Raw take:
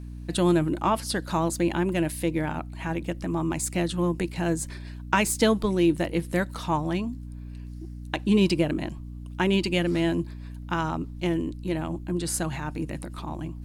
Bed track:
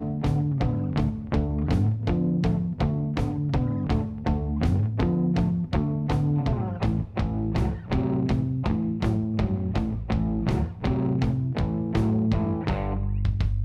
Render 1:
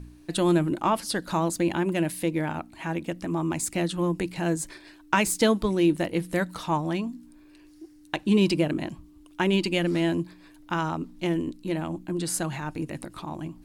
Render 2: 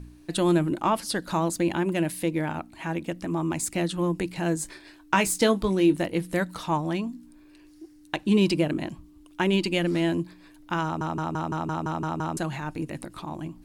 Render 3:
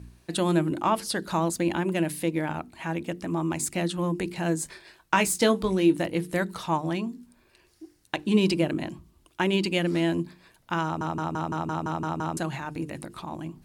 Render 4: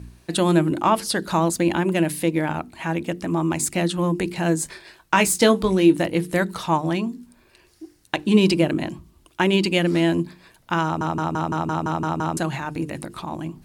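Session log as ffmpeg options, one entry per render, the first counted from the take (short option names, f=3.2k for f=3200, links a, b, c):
-af "bandreject=f=60:t=h:w=4,bandreject=f=120:t=h:w=4,bandreject=f=180:t=h:w=4,bandreject=f=240:t=h:w=4"
-filter_complex "[0:a]asettb=1/sr,asplit=3[a][b][c];[a]atrim=end=4.574[d];[b]atrim=start=4.57:end=6.02,asetpts=PTS-STARTPTS,afade=t=in:d=0.004:c=qsin,afade=t=out:st=1.446:d=0.004:c=qsin,asplit=2[e][f];[f]adelay=21,volume=-11dB[g];[e][g]amix=inputs=2:normalize=0,atrim=end_sample=63945[h];[c]atrim=start=6.016[i];[d][h]acrossfade=d=0.004:c1=hsin:c2=qsin[j];[j][i]acrossfade=d=0.004:c1=qsin:c2=hsin,asplit=10[k][l][m][n][o][p][q][r][s][t];[k]atrim=end=11.012[u];[l]atrim=start=10.838:end=11.012[v];[m]atrim=start=10.838:end=11.012[w];[n]atrim=start=10.838:end=11.012[x];[o]atrim=start=10.838:end=11.012[y];[p]atrim=start=10.838:end=11.012[z];[q]atrim=start=10.838:end=11.012[aa];[r]atrim=start=10.838:end=11.012[ab];[s]atrim=start=10.838:end=11.012[ac];[t]atrim=start=12.368[ad];[u][v]acrossfade=d=0.004:c1=hsin:c2=hsin[ae];[ae][w]acrossfade=d=0.004:c1=hsin:c2=hsin[af];[af][x]acrossfade=d=0.004:c1=hsin:c2=hsin[ag];[ag][y]acrossfade=d=0.004:c1=hsin:c2=hsin[ah];[ah][z]acrossfade=d=0.004:c1=hsin:c2=hsin[ai];[ai][aa]acrossfade=d=0.004:c1=hsin:c2=hsin[aj];[aj][ab]acrossfade=d=0.004:c1=hsin:c2=hsin[ak];[ak][ac]acrossfade=d=0.004:c1=hsin:c2=hsin[al];[al][ad]acrossfade=d=0.004:c1=hsin:c2=hsin"
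-af "highpass=42,bandreject=f=50:t=h:w=6,bandreject=f=100:t=h:w=6,bandreject=f=150:t=h:w=6,bandreject=f=200:t=h:w=6,bandreject=f=250:t=h:w=6,bandreject=f=300:t=h:w=6,bandreject=f=350:t=h:w=6,bandreject=f=400:t=h:w=6,bandreject=f=450:t=h:w=6"
-af "volume=5.5dB,alimiter=limit=-3dB:level=0:latency=1"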